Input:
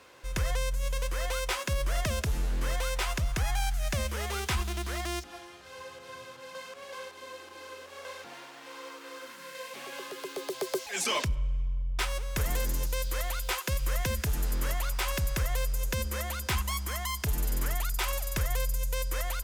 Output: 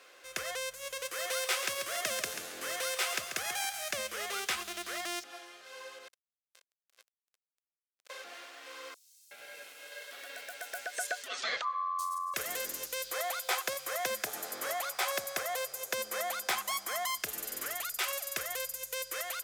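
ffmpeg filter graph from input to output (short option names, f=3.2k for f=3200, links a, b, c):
-filter_complex "[0:a]asettb=1/sr,asplit=3[a][b][c];[a]atrim=end=1.054[d];[b]atrim=start=1.05:end=3.91,asetpts=PTS-STARTPTS,afade=t=in:d=0.004:c=qsin,afade=t=out:st=2.856:d=0.004:c=qsin,highpass=73,highshelf=f=5.6k:g=4,aecho=1:1:138|276|414|552:0.398|0.135|0.046|0.0156,atrim=end_sample=126126[e];[c]atrim=start=3.906[f];[d][e]acrossfade=d=0.004:c1=hsin:c2=qsin[g];[g][f]acrossfade=d=0.004:c1=qsin:c2=hsin,asettb=1/sr,asplit=3[h][i][j];[h]atrim=end=6.084[k];[i]atrim=start=6.08:end=8.1,asetpts=PTS-STARTPTS,afade=t=in:d=0.004:c=qsin,afade=t=out:st=2.016:d=0.004:c=qsin,highpass=330,acrusher=bits=4:mix=0:aa=0.5[l];[j]atrim=start=8.096[m];[k][l]acrossfade=d=0.004:c1=hsin:c2=qsin[n];[n][m]acrossfade=d=0.004:c1=qsin:c2=hsin,asettb=1/sr,asplit=3[o][p][q];[o]atrim=end=8.944[r];[p]atrim=start=8.94:end=12.34,asetpts=PTS-STARTPTS,afade=t=in:d=0.004:c=qsin,afade=t=out:st=3.396:d=0.004:c=qsin,aeval=exprs='val(0)*sin(2*PI*1100*n/s)':c=same,acrossover=split=5900[s][t];[s]adelay=370[u];[u][t]amix=inputs=2:normalize=0,atrim=end_sample=149940[v];[q]atrim=start=12.336[w];[r][v]acrossfade=d=0.004:c1=hsin:c2=qsin[x];[x][w]acrossfade=d=0.004:c1=qsin:c2=hsin,asettb=1/sr,asplit=3[y][z][aa];[y]atrim=end=13.114[ab];[z]atrim=start=13.11:end=17.18,asetpts=PTS-STARTPTS,afade=t=in:d=0.004:c=qsin,afade=t=out:st=4.066:d=0.004:c=qsin,highpass=110,equalizer=f=770:w=1.6:g=9.5,bandreject=f=2.8k:w=13[ac];[aa]atrim=start=17.176[ad];[ab][ac]acrossfade=d=0.004:c1=hsin:c2=qsin[ae];[ae][ad]acrossfade=d=0.004:c1=qsin:c2=hsin,highpass=510,equalizer=f=930:t=o:w=0.21:g=-14.5"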